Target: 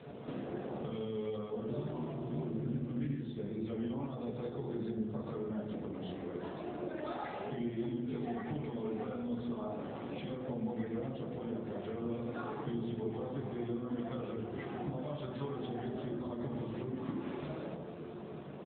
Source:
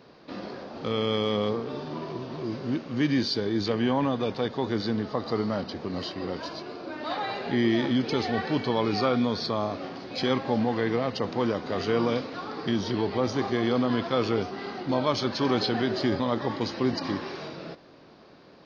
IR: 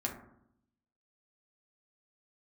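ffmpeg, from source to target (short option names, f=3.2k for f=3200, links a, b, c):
-filter_complex "[0:a]asetnsamples=n=441:p=0,asendcmd='10.46 equalizer g -14;11.55 equalizer g -3',equalizer=f=1k:w=7.3:g=-6,flanger=delay=9.4:depth=2.8:regen=68:speed=1.2:shape=triangular,lowshelf=f=110:g=5,asplit=2[a][b];[b]adelay=154,lowpass=f=1.1k:p=1,volume=-12.5dB,asplit=2[c][d];[d]adelay=154,lowpass=f=1.1k:p=1,volume=0.34,asplit=2[e][f];[f]adelay=154,lowpass=f=1.1k:p=1,volume=0.34[g];[a][c][e][g]amix=inputs=4:normalize=0,alimiter=level_in=1dB:limit=-24dB:level=0:latency=1:release=261,volume=-1dB,acompressor=threshold=-47dB:ratio=6,bandreject=f=104.6:t=h:w=4,bandreject=f=209.2:t=h:w=4,bandreject=f=313.8:t=h:w=4,bandreject=f=418.4:t=h:w=4[h];[1:a]atrim=start_sample=2205,asetrate=26460,aresample=44100[i];[h][i]afir=irnorm=-1:irlink=0,volume=3.5dB" -ar 8000 -c:a libopencore_amrnb -b:a 7950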